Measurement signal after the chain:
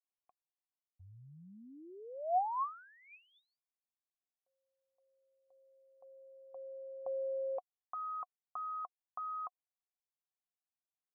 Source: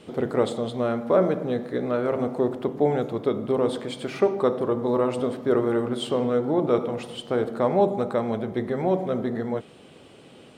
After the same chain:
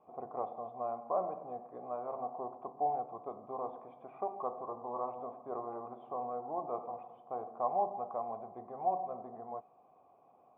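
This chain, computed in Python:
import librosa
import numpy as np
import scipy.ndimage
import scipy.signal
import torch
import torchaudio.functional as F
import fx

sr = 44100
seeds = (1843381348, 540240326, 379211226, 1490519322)

y = fx.formant_cascade(x, sr, vowel='a')
y = F.gain(torch.from_numpy(y), 1.0).numpy()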